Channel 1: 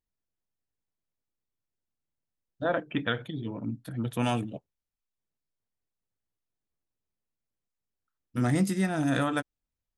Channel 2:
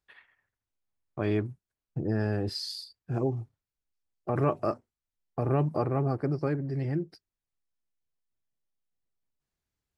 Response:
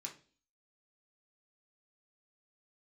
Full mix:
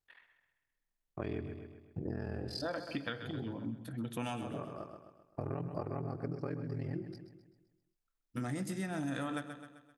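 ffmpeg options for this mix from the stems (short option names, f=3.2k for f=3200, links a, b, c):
-filter_complex "[0:a]volume=-6dB,asplit=4[a][b][c][d];[b]volume=-7.5dB[e];[c]volume=-12dB[f];[1:a]aeval=exprs='val(0)*sin(2*PI*21*n/s)':c=same,volume=-2.5dB,asplit=2[g][h];[h]volume=-11.5dB[i];[d]apad=whole_len=440036[j];[g][j]sidechaincompress=threshold=-56dB:ratio=8:attack=16:release=605[k];[2:a]atrim=start_sample=2205[l];[e][l]afir=irnorm=-1:irlink=0[m];[f][i]amix=inputs=2:normalize=0,aecho=0:1:130|260|390|520|650|780|910:1|0.48|0.23|0.111|0.0531|0.0255|0.0122[n];[a][k][m][n]amix=inputs=4:normalize=0,acompressor=threshold=-34dB:ratio=6"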